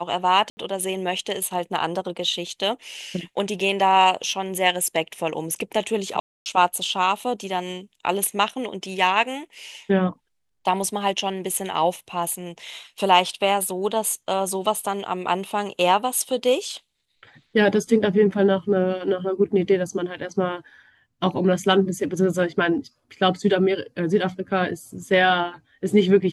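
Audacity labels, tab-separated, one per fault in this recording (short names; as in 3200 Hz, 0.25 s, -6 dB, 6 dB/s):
0.500000	0.570000	gap 70 ms
6.200000	6.460000	gap 0.259 s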